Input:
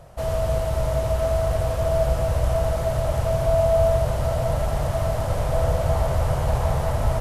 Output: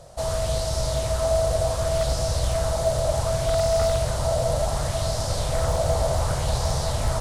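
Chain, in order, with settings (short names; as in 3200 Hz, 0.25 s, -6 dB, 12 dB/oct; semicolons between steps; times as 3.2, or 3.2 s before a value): band shelf 6000 Hz +11.5 dB; wavefolder -12.5 dBFS; LFO bell 0.67 Hz 530–5400 Hz +6 dB; gain -2.5 dB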